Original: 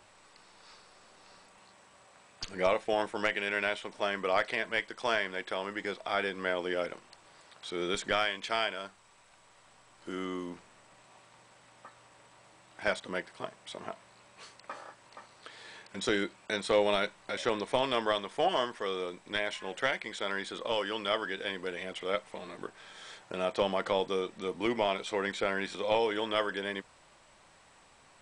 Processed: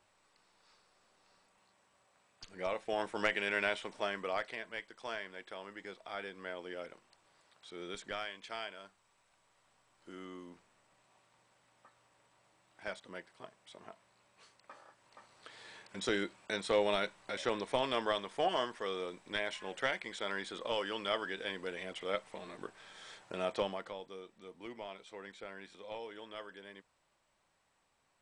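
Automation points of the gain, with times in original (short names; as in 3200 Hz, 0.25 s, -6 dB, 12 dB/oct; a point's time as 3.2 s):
2.44 s -12.5 dB
3.24 s -2 dB
3.84 s -2 dB
4.66 s -11.5 dB
14.86 s -11.5 dB
15.54 s -4 dB
23.57 s -4 dB
23.97 s -16.5 dB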